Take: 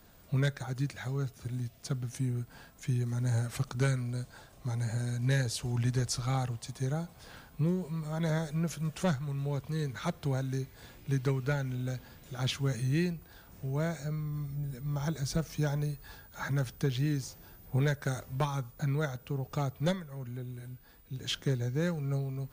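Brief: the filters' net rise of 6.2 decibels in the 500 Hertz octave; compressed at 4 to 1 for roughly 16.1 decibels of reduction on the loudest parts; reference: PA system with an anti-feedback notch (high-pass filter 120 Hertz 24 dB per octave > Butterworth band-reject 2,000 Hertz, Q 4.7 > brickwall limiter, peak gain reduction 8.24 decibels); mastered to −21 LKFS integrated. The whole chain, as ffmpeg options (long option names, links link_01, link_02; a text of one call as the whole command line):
ffmpeg -i in.wav -af "equalizer=frequency=500:width_type=o:gain=7.5,acompressor=threshold=-42dB:ratio=4,highpass=frequency=120:width=0.5412,highpass=frequency=120:width=1.3066,asuperstop=centerf=2000:order=8:qfactor=4.7,volume=25.5dB,alimiter=limit=-11dB:level=0:latency=1" out.wav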